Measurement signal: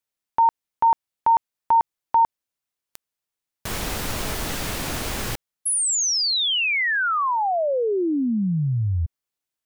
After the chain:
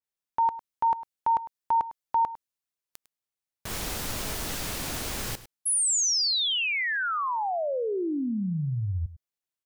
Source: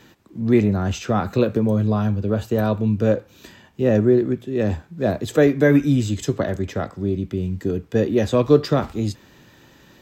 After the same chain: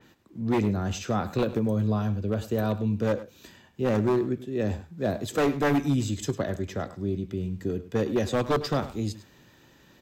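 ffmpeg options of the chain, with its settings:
ffmpeg -i in.wav -filter_complex "[0:a]aeval=exprs='0.316*(abs(mod(val(0)/0.316+3,4)-2)-1)':channel_layout=same,asplit=2[link_01][link_02];[link_02]aecho=0:1:103:0.168[link_03];[link_01][link_03]amix=inputs=2:normalize=0,adynamicequalizer=threshold=0.0141:dfrequency=3400:dqfactor=0.7:tfrequency=3400:tqfactor=0.7:attack=5:release=100:ratio=0.375:range=2:mode=boostabove:tftype=highshelf,volume=-6.5dB" out.wav

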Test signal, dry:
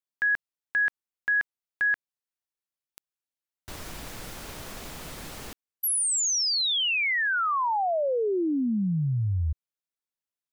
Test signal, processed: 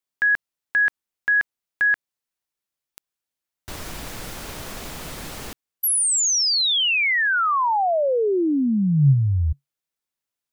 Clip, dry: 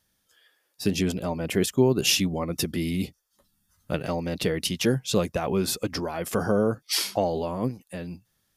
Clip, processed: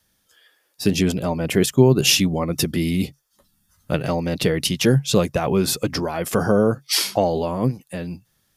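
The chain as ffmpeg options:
ffmpeg -i in.wav -af "adynamicequalizer=threshold=0.00398:dfrequency=140:dqfactor=6.3:tfrequency=140:tqfactor=6.3:attack=5:release=100:ratio=0.375:range=4:mode=boostabove:tftype=bell,volume=5.5dB" out.wav

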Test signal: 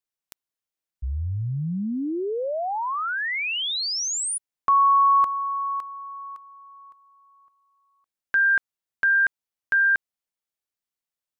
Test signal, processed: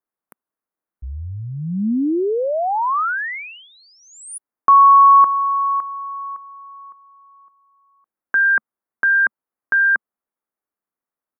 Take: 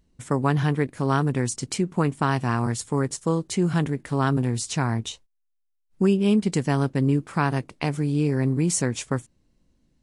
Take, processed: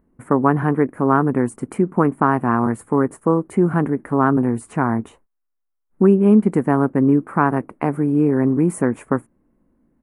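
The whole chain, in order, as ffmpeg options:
ffmpeg -i in.wav -af "firequalizer=gain_entry='entry(130,0);entry(220,10);entry(320,10);entry(550,8);entry(1200,10);entry(2100,0);entry(3500,-21);entry(5500,-24);entry(9800,-1)':delay=0.05:min_phase=1,volume=-1.5dB" out.wav

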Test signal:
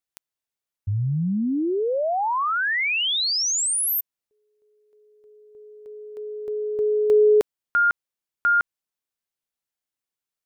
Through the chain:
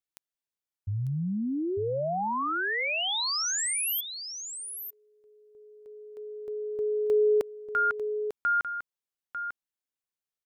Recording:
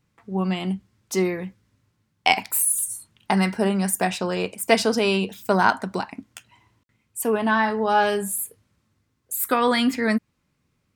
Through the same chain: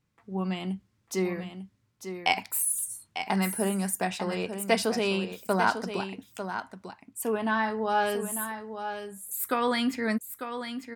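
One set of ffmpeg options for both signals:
ffmpeg -i in.wav -af "aecho=1:1:897:0.355,volume=-6.5dB" out.wav

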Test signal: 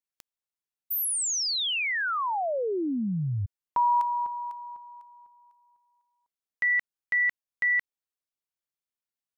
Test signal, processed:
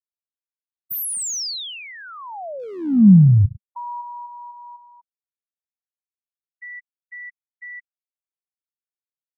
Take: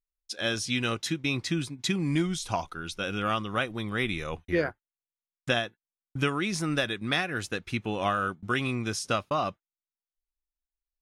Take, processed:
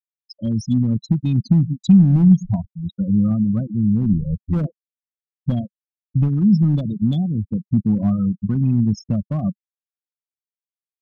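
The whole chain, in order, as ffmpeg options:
ffmpeg -i in.wav -filter_complex "[0:a]acrossover=split=680|4100[link_01][link_02][link_03];[link_02]acompressor=threshold=-40dB:ratio=8:attack=0.34:release=458:knee=1:detection=peak[link_04];[link_01][link_04][link_03]amix=inputs=3:normalize=0,aecho=1:1:105|210|315|420:0.119|0.0606|0.0309|0.0158,afftfilt=real='re*gte(hypot(re,im),0.0631)':imag='im*gte(hypot(re,im),0.0631)':win_size=1024:overlap=0.75,volume=26dB,asoftclip=hard,volume=-26dB,lowshelf=frequency=280:width_type=q:width=3:gain=11.5,volume=2.5dB" out.wav

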